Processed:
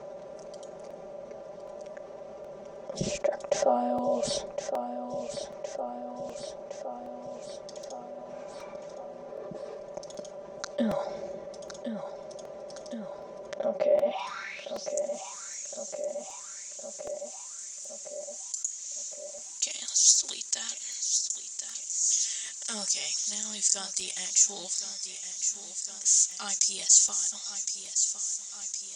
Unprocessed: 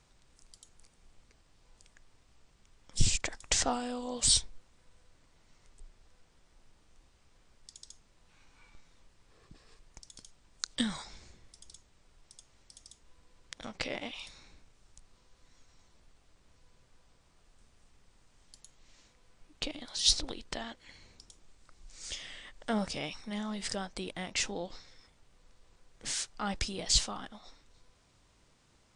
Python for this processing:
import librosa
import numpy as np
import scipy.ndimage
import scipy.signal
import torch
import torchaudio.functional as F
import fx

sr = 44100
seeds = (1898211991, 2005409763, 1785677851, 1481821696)

y = fx.highpass(x, sr, hz=150.0, slope=6)
y = fx.low_shelf(y, sr, hz=450.0, db=10.0)
y = fx.filter_sweep_bandpass(y, sr, from_hz=580.0, to_hz=7200.0, start_s=14.07, end_s=14.93, q=7.4)
y = fx.peak_eq(y, sr, hz=6100.0, db=10.5, octaves=0.37)
y = y + 0.89 * np.pad(y, (int(5.1 * sr / 1000.0), 0))[:len(y)]
y = fx.echo_feedback(y, sr, ms=1063, feedback_pct=50, wet_db=-15.0)
y = fx.buffer_crackle(y, sr, first_s=0.9, period_s=0.77, block=128, kind='repeat')
y = fx.env_flatten(y, sr, amount_pct=50)
y = y * 10.0 ** (8.0 / 20.0)